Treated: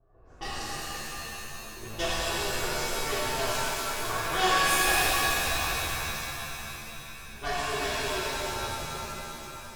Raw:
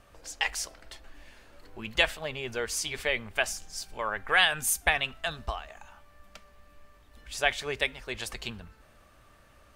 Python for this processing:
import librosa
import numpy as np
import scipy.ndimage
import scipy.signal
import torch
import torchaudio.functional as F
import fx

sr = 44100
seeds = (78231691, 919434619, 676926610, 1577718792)

y = fx.lower_of_two(x, sr, delay_ms=2.7)
y = fx.env_lowpass(y, sr, base_hz=730.0, full_db=-26.5)
y = fx.peak_eq(y, sr, hz=2300.0, db=-10.5, octaves=0.96)
y = fx.rev_shimmer(y, sr, seeds[0], rt60_s=3.5, semitones=7, shimmer_db=-2, drr_db=-11.0)
y = F.gain(torch.from_numpy(y), -8.5).numpy()